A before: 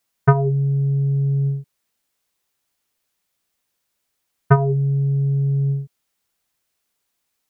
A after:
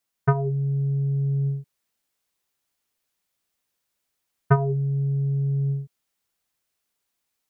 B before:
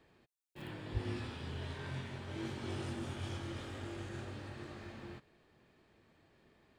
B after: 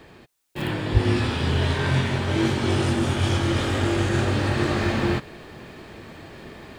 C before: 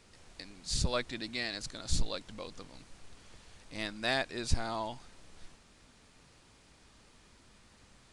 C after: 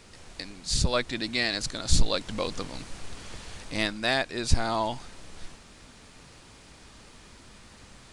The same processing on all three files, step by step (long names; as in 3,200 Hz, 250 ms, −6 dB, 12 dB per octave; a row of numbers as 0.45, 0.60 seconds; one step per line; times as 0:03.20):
speech leveller 0.5 s
normalise the peak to −6 dBFS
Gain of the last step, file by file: −5.0, +21.0, +8.5 decibels